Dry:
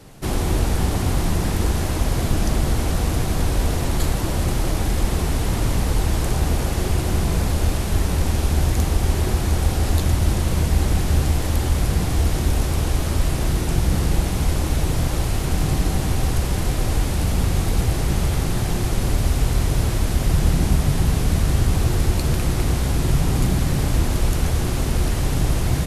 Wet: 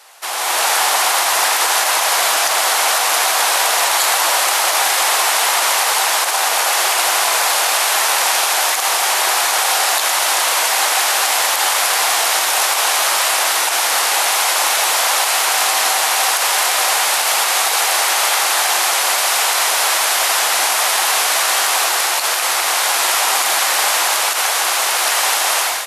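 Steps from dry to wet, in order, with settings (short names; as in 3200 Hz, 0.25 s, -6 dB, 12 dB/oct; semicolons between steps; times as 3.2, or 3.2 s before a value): HPF 770 Hz 24 dB/oct; AGC gain up to 10 dB; maximiser +11 dB; gain -3.5 dB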